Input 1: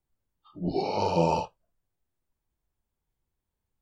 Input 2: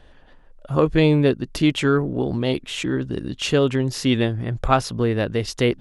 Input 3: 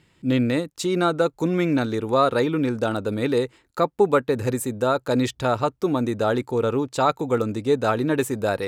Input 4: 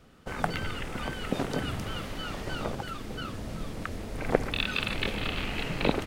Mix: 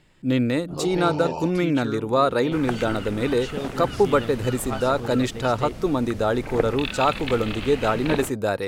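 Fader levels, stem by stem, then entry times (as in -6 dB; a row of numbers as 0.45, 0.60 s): -6.0, -14.0, -0.5, -0.5 dB; 0.05, 0.00, 0.00, 2.25 s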